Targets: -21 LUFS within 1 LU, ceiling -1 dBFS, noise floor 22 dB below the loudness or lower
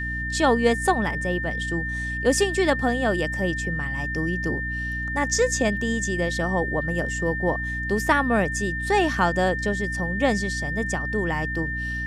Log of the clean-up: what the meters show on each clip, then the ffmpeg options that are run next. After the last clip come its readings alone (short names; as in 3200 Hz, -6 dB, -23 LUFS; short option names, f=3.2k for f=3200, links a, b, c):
hum 60 Hz; harmonics up to 300 Hz; hum level -29 dBFS; steady tone 1800 Hz; tone level -28 dBFS; loudness -24.0 LUFS; peak -6.0 dBFS; loudness target -21.0 LUFS
-> -af "bandreject=f=60:t=h:w=6,bandreject=f=120:t=h:w=6,bandreject=f=180:t=h:w=6,bandreject=f=240:t=h:w=6,bandreject=f=300:t=h:w=6"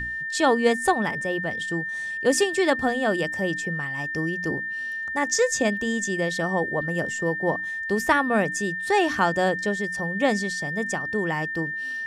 hum none; steady tone 1800 Hz; tone level -28 dBFS
-> -af "bandreject=f=1.8k:w=30"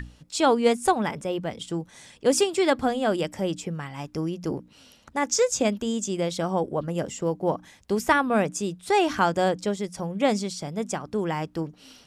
steady tone none; loudness -26.0 LUFS; peak -7.0 dBFS; loudness target -21.0 LUFS
-> -af "volume=5dB"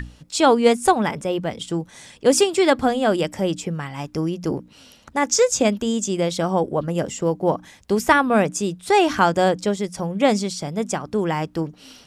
loudness -21.0 LUFS; peak -2.0 dBFS; noise floor -51 dBFS